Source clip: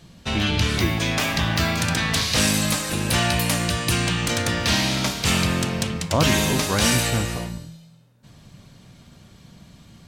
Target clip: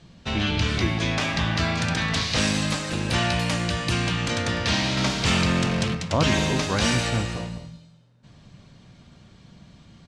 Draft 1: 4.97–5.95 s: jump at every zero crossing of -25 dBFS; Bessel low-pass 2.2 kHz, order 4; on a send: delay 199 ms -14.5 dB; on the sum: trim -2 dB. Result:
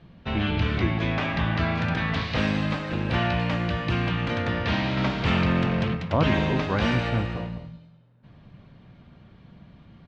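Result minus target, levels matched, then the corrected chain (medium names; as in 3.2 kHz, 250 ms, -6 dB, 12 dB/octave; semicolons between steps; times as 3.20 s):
4 kHz band -6.0 dB
4.97–5.95 s: jump at every zero crossing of -25 dBFS; Bessel low-pass 5.6 kHz, order 4; on a send: delay 199 ms -14.5 dB; on the sum: trim -2 dB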